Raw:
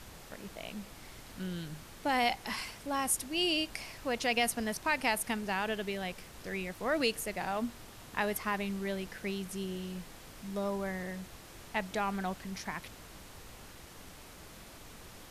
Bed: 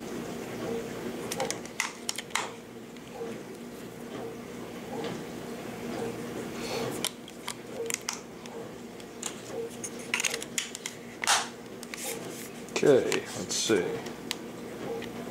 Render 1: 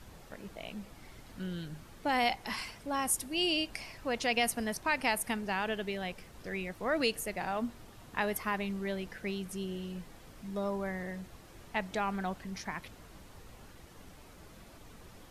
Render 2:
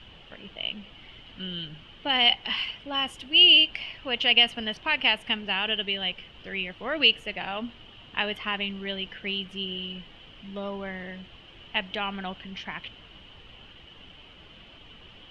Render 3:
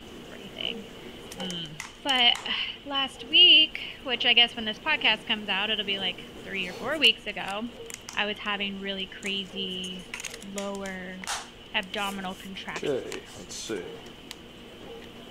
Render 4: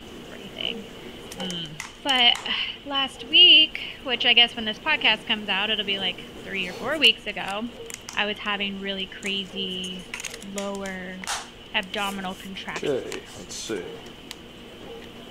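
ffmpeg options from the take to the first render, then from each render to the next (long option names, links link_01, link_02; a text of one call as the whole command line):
ffmpeg -i in.wav -af "afftdn=noise_reduction=7:noise_floor=-52" out.wav
ffmpeg -i in.wav -af "lowpass=frequency=3000:width_type=q:width=12" out.wav
ffmpeg -i in.wav -i bed.wav -filter_complex "[1:a]volume=-8dB[link_01];[0:a][link_01]amix=inputs=2:normalize=0" out.wav
ffmpeg -i in.wav -af "volume=3dB" out.wav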